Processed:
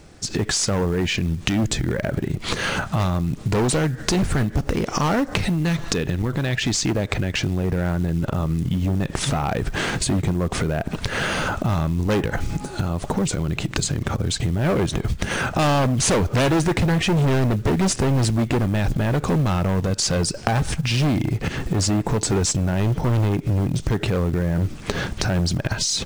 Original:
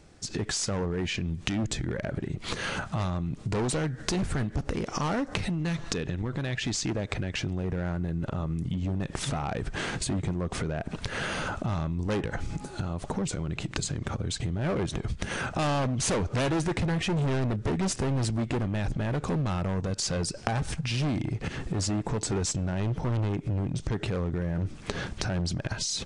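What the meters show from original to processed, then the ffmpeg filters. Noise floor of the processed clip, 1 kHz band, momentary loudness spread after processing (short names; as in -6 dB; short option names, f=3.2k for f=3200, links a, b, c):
-36 dBFS, +8.0 dB, 5 LU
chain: -af "acontrast=45,acrusher=bits=7:mode=log:mix=0:aa=0.000001,volume=2.5dB"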